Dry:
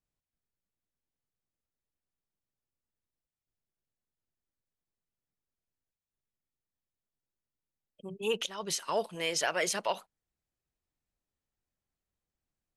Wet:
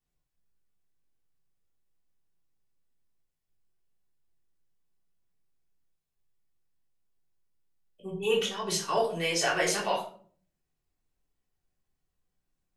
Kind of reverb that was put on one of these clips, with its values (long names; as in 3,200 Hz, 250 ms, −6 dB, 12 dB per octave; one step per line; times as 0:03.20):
rectangular room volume 430 cubic metres, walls furnished, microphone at 3.5 metres
level −1.5 dB